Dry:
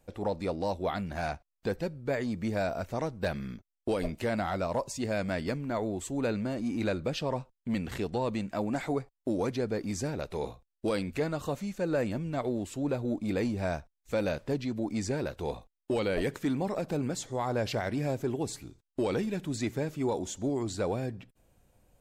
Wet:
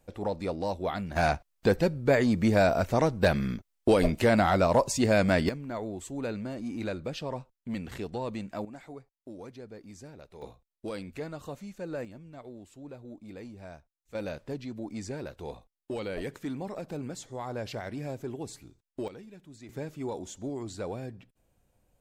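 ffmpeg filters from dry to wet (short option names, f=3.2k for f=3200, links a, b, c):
-af "asetnsamples=n=441:p=0,asendcmd='1.16 volume volume 8dB;5.49 volume volume -3.5dB;8.65 volume volume -14dB;10.42 volume volume -7dB;12.05 volume volume -14dB;14.15 volume volume -5.5dB;19.08 volume volume -16.5dB;19.69 volume volume -5dB',volume=0dB"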